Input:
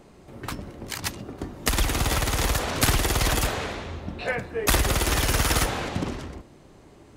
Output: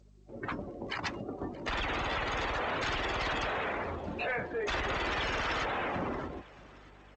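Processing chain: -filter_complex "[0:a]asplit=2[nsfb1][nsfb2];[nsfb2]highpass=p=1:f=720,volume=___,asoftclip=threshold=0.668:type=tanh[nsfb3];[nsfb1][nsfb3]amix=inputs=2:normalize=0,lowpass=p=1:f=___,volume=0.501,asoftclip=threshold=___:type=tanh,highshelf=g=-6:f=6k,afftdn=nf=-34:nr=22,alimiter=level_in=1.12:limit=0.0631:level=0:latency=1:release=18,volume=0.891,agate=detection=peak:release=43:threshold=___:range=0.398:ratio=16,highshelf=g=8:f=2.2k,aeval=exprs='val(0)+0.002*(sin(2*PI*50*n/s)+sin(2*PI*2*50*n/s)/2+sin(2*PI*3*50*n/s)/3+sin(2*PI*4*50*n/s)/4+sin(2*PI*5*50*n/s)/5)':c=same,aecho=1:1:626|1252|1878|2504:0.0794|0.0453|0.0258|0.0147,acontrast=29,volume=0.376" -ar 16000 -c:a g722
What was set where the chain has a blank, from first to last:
6.31, 1.4k, 0.15, 0.00398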